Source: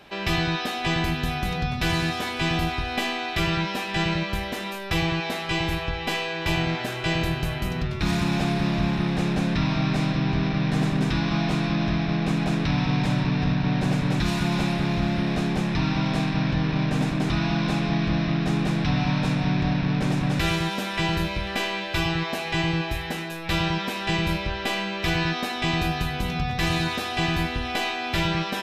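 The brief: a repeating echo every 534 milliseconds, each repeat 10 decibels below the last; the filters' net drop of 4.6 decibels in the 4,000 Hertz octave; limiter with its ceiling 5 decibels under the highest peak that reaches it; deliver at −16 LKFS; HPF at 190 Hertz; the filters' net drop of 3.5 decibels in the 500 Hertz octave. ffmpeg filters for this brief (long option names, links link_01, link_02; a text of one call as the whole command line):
ffmpeg -i in.wav -af "highpass=190,equalizer=frequency=500:width_type=o:gain=-5,equalizer=frequency=4000:width_type=o:gain=-6,alimiter=limit=-20dB:level=0:latency=1,aecho=1:1:534|1068|1602|2136:0.316|0.101|0.0324|0.0104,volume=13.5dB" out.wav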